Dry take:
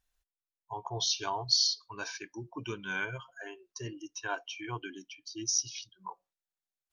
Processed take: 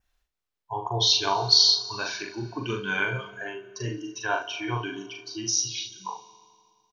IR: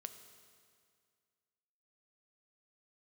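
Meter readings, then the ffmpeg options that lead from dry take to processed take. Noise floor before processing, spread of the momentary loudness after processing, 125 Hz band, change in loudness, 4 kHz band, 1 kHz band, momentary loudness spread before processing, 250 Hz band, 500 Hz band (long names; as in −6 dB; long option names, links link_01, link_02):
below −85 dBFS, 18 LU, +10.0 dB, +8.5 dB, +9.5 dB, +9.0 dB, 18 LU, +8.5 dB, +9.5 dB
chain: -filter_complex "[0:a]adynamicequalizer=threshold=0.00398:dfrequency=3800:dqfactor=4:tfrequency=3800:tqfactor=4:attack=5:release=100:ratio=0.375:range=4:mode=boostabove:tftype=bell,aecho=1:1:41|76:0.668|0.251,asplit=2[link_01][link_02];[1:a]atrim=start_sample=2205,lowpass=5800[link_03];[link_02][link_03]afir=irnorm=-1:irlink=0,volume=6.5dB[link_04];[link_01][link_04]amix=inputs=2:normalize=0"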